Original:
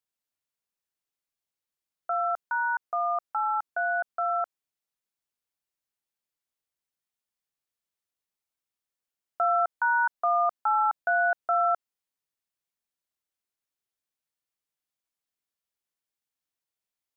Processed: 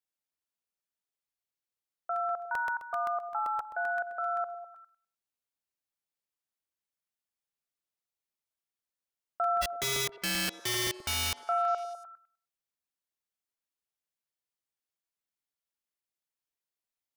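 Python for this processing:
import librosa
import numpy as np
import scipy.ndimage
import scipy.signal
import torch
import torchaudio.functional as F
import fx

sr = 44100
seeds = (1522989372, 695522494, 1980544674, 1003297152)

y = fx.overflow_wrap(x, sr, gain_db=21.5, at=(9.61, 11.39), fade=0.02)
y = fx.echo_stepped(y, sr, ms=101, hz=420.0, octaves=0.7, feedback_pct=70, wet_db=-8)
y = fx.buffer_crackle(y, sr, first_s=0.34, period_s=0.13, block=64, kind='repeat')
y = y * librosa.db_to_amplitude(-4.5)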